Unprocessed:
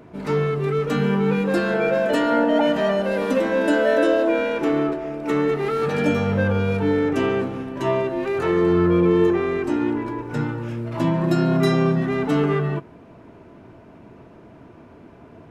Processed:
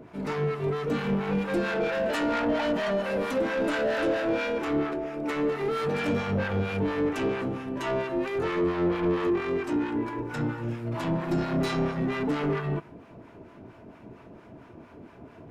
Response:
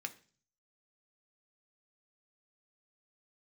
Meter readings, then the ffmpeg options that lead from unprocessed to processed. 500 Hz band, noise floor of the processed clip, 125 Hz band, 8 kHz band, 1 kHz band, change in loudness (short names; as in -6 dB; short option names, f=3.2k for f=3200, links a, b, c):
-7.5 dB, -51 dBFS, -8.0 dB, n/a, -6.0 dB, -7.0 dB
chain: -filter_complex "[0:a]asoftclip=type=tanh:threshold=-21dB,acrossover=split=780[a][b];[a]aeval=exprs='val(0)*(1-0.7/2+0.7/2*cos(2*PI*4.4*n/s))':c=same[c];[b]aeval=exprs='val(0)*(1-0.7/2-0.7/2*cos(2*PI*4.4*n/s))':c=same[d];[c][d]amix=inputs=2:normalize=0,asplit=2[e][f];[1:a]atrim=start_sample=2205[g];[f][g]afir=irnorm=-1:irlink=0,volume=-11.5dB[h];[e][h]amix=inputs=2:normalize=0"